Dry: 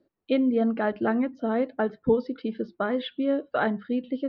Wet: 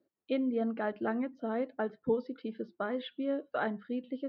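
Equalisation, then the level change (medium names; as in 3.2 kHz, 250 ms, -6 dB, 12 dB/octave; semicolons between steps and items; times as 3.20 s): high-pass 160 Hz 6 dB/octave; distance through air 54 m; -7.0 dB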